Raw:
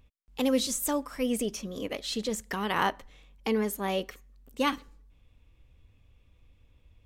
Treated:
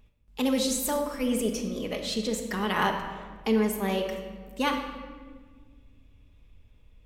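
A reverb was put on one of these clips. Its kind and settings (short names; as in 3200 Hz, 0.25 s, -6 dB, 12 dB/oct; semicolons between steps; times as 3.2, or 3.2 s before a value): shoebox room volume 1800 m³, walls mixed, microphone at 1.4 m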